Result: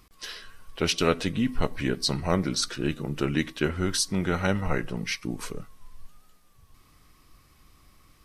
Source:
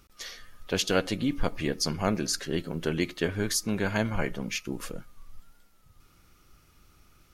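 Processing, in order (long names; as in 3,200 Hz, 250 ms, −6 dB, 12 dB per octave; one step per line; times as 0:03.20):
speed change −11%
level +2 dB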